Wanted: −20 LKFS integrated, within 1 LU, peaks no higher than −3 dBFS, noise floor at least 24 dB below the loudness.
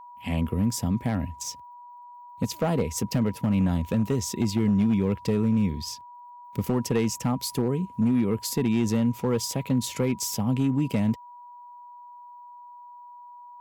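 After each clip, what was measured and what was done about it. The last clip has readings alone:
share of clipped samples 1.1%; peaks flattened at −16.5 dBFS; interfering tone 970 Hz; level of the tone −43 dBFS; integrated loudness −26.0 LKFS; sample peak −16.5 dBFS; target loudness −20.0 LKFS
→ clipped peaks rebuilt −16.5 dBFS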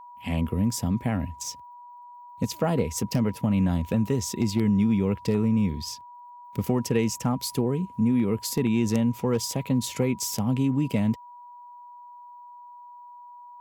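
share of clipped samples 0.0%; interfering tone 970 Hz; level of the tone −43 dBFS
→ notch filter 970 Hz, Q 30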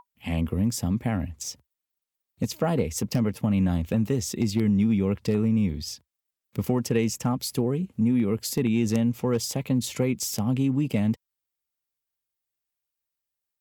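interfering tone none found; integrated loudness −26.0 LKFS; sample peak −8.0 dBFS; target loudness −20.0 LKFS
→ level +6 dB
brickwall limiter −3 dBFS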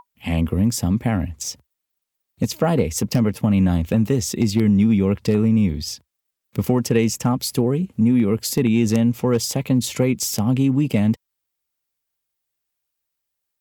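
integrated loudness −20.0 LKFS; sample peak −3.0 dBFS; background noise floor −80 dBFS

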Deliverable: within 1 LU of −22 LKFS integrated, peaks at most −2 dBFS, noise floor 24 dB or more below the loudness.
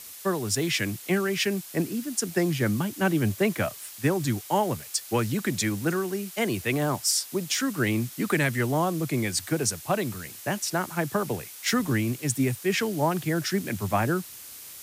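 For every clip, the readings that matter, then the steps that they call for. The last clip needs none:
background noise floor −43 dBFS; target noise floor −51 dBFS; integrated loudness −27.0 LKFS; sample peak −11.5 dBFS; target loudness −22.0 LKFS
→ noise reduction from a noise print 8 dB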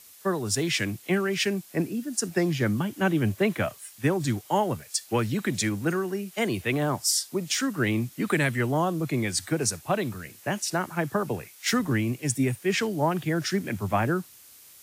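background noise floor −51 dBFS; integrated loudness −27.0 LKFS; sample peak −11.5 dBFS; target loudness −22.0 LKFS
→ level +5 dB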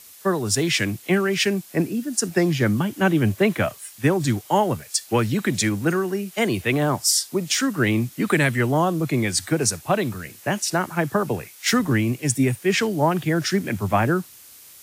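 integrated loudness −22.0 LKFS; sample peak −6.5 dBFS; background noise floor −46 dBFS

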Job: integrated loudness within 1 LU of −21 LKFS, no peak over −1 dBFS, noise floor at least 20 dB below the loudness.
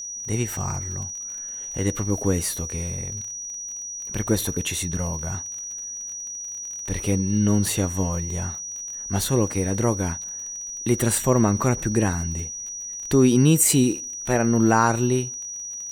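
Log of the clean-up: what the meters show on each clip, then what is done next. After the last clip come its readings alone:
crackle rate 31 per second; interfering tone 5,800 Hz; level of the tone −31 dBFS; integrated loudness −23.5 LKFS; sample peak −4.0 dBFS; target loudness −21.0 LKFS
→ click removal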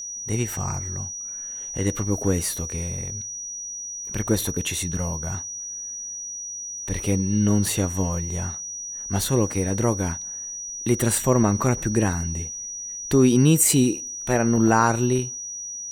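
crackle rate 1.3 per second; interfering tone 5,800 Hz; level of the tone −31 dBFS
→ notch filter 5,800 Hz, Q 30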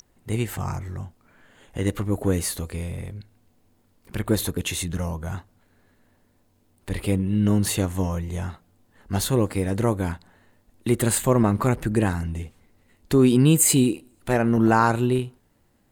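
interfering tone none found; integrated loudness −23.0 LKFS; sample peak −4.0 dBFS; target loudness −21.0 LKFS
→ level +2 dB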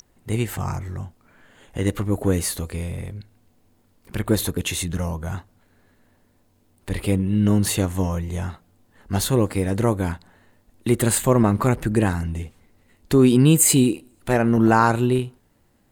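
integrated loudness −21.0 LKFS; sample peak −2.0 dBFS; background noise floor −62 dBFS

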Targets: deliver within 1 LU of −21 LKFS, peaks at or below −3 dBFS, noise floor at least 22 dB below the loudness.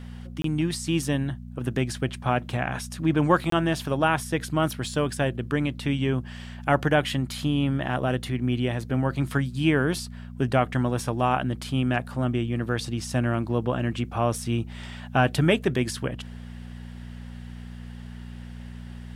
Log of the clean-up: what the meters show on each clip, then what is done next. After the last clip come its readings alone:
number of dropouts 2; longest dropout 23 ms; mains hum 60 Hz; hum harmonics up to 240 Hz; level of the hum −36 dBFS; integrated loudness −26.0 LKFS; sample peak −6.5 dBFS; target loudness −21.0 LKFS
→ repair the gap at 0:00.42/0:03.50, 23 ms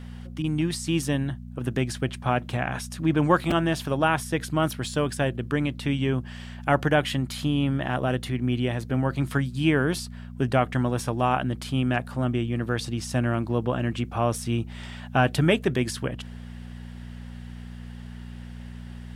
number of dropouts 0; mains hum 60 Hz; hum harmonics up to 240 Hz; level of the hum −36 dBFS
→ hum removal 60 Hz, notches 4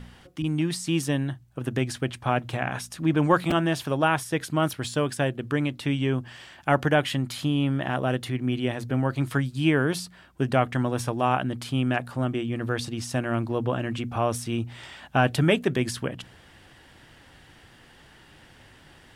mains hum none found; integrated loudness −26.5 LKFS; sample peak −6.5 dBFS; target loudness −21.0 LKFS
→ level +5.5 dB
brickwall limiter −3 dBFS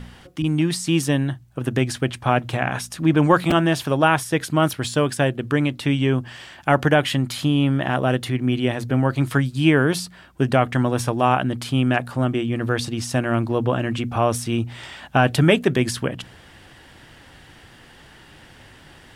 integrated loudness −21.0 LKFS; sample peak −3.0 dBFS; background noise floor −48 dBFS

